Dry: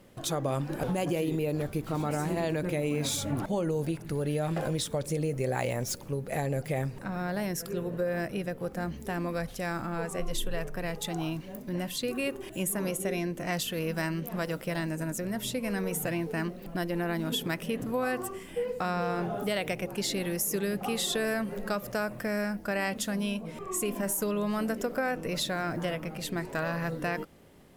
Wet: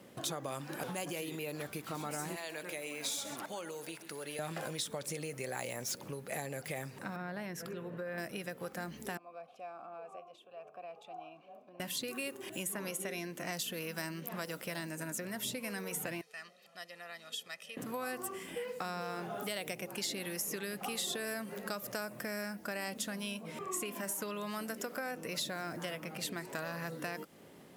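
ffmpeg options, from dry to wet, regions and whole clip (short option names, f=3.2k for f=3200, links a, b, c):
-filter_complex "[0:a]asettb=1/sr,asplit=3[a][b][c];[a]atrim=end=2.364[d];[b]atrim=start=2.36:end=4.39,asetpts=PTS-STARTPTS,afade=t=in:d=0.004:c=qsin,afade=t=out:st=2.026:d=0.004:c=qsin,highpass=f=1.5k:p=1,aecho=1:1:132:0.188,atrim=end_sample=89523[e];[c]atrim=start=4.386[f];[d][e]acrossfade=d=0.004:c1=hsin:c2=qsin[g];[g][f]acrossfade=d=0.004:c1=qsin:c2=hsin,asettb=1/sr,asplit=3[h][i][j];[h]atrim=end=7.164[k];[i]atrim=start=7.16:end=8.18,asetpts=PTS-STARTPTS,afade=t=in:d=0.004:c=qsin,afade=t=out:st=1.016:d=0.004:c=qsin,bass=f=250:g=3,treble=f=4k:g=-12,acompressor=threshold=-36dB:ratio=1.5:attack=3.2:release=140:knee=1:detection=peak[l];[j]atrim=start=8.176[m];[k][l]acrossfade=d=0.004:c1=hsin:c2=qsin[n];[n][m]acrossfade=d=0.004:c1=qsin:c2=hsin,asettb=1/sr,asplit=3[o][p][q];[o]atrim=end=9.174[r];[p]atrim=start=9.17:end=11.8,asetpts=PTS-STARTPTS,afade=t=in:d=0.004:c=qsin,afade=t=out:st=2.626:d=0.004:c=qsin,acompressor=threshold=-33dB:ratio=4:attack=3.2:release=140:knee=1:detection=peak,asplit=3[s][t][u];[s]bandpass=f=730:t=q:w=8,volume=0dB[v];[t]bandpass=f=1.09k:t=q:w=8,volume=-6dB[w];[u]bandpass=f=2.44k:t=q:w=8,volume=-9dB[x];[v][w][x]amix=inputs=3:normalize=0[y];[q]atrim=start=11.796[z];[r][y]acrossfade=d=0.004:c1=hsin:c2=qsin[aa];[aa][z]acrossfade=d=0.004:c1=qsin:c2=hsin,asettb=1/sr,asplit=3[ab][ac][ad];[ab]atrim=end=16.214[ae];[ac]atrim=start=16.21:end=17.77,asetpts=PTS-STARTPTS,afade=t=in:d=0.004:c=qsin,afade=t=out:st=1.556:d=0.004:c=qsin,lowpass=4.8k,aderivative,aecho=1:1:1.6:0.67,atrim=end_sample=68796[af];[ad]atrim=start=17.766[ag];[ae][af]acrossfade=d=0.004:c1=hsin:c2=qsin[ah];[ah][ag]acrossfade=d=0.004:c1=qsin:c2=hsin,highpass=150,acrossover=split=940|4600[ai][aj][ak];[ai]acompressor=threshold=-44dB:ratio=4[al];[aj]acompressor=threshold=-44dB:ratio=4[am];[ak]acompressor=threshold=-40dB:ratio=4[an];[al][am][an]amix=inputs=3:normalize=0,volume=1.5dB"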